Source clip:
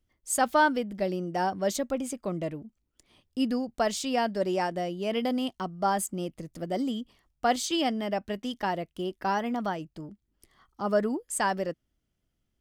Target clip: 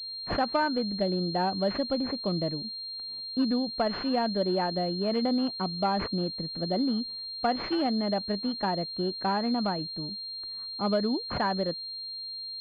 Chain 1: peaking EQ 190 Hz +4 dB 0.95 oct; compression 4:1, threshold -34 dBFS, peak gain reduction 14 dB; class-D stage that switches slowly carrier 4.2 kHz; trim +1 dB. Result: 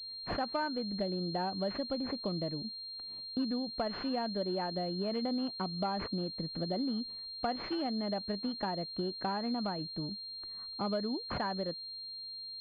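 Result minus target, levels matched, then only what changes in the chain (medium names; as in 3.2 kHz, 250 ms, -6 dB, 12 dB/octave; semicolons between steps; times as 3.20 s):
compression: peak gain reduction +8 dB
change: compression 4:1, threshold -23.5 dBFS, peak gain reduction 6 dB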